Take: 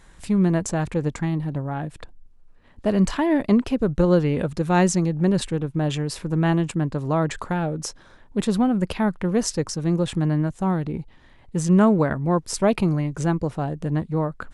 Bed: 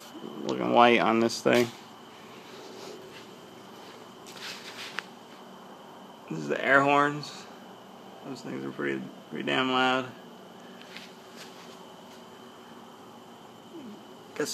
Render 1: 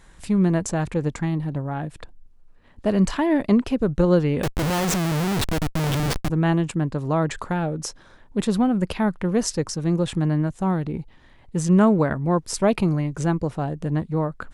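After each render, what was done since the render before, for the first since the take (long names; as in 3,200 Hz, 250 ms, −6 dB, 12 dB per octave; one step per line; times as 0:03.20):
0:04.43–0:06.30: comparator with hysteresis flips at −27.5 dBFS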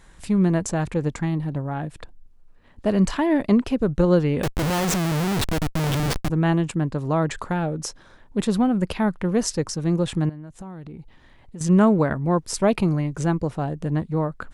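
0:10.29–0:11.61: downward compressor 8 to 1, threshold −34 dBFS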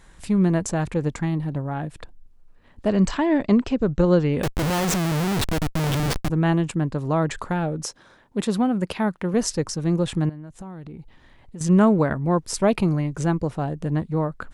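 0:02.88–0:04.33: linear-phase brick-wall low-pass 8,200 Hz
0:07.85–0:09.34: high-pass filter 150 Hz 6 dB per octave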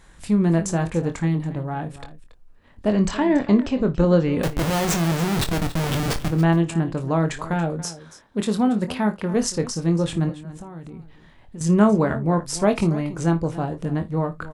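double-tracking delay 24 ms −8 dB
multi-tap delay 56/281 ms −17.5/−16 dB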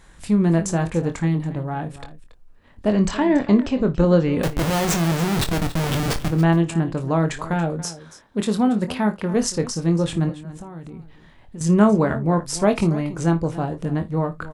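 level +1 dB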